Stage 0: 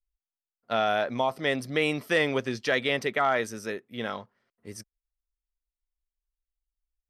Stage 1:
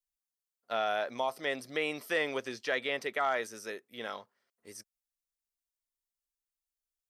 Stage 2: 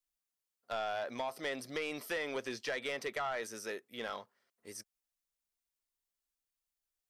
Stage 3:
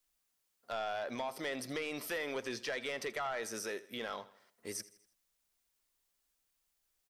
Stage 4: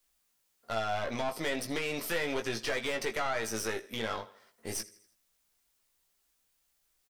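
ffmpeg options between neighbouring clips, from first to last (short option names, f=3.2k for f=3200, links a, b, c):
-filter_complex "[0:a]acrossover=split=3200[a][b];[b]acompressor=threshold=-46dB:ratio=4:attack=1:release=60[c];[a][c]amix=inputs=2:normalize=0,bass=f=250:g=-13,treble=f=4k:g=9,volume=-5.5dB"
-af "acompressor=threshold=-31dB:ratio=6,asoftclip=type=tanh:threshold=-30.5dB,volume=1dB"
-af "alimiter=level_in=16dB:limit=-24dB:level=0:latency=1:release=268,volume=-16dB,aecho=1:1:81|162|243|324:0.119|0.057|0.0274|0.0131,volume=9dB"
-filter_complex "[0:a]aeval=exprs='(tanh(56.2*val(0)+0.65)-tanh(0.65))/56.2':c=same,asplit=2[a][b];[b]adelay=18,volume=-5.5dB[c];[a][c]amix=inputs=2:normalize=0,volume=8dB"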